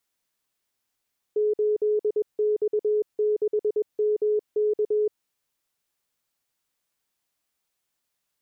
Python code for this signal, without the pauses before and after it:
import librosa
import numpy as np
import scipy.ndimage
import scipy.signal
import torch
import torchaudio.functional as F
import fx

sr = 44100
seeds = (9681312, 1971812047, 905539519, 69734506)

y = fx.morse(sr, text='8X6MK', wpm=21, hz=423.0, level_db=-19.5)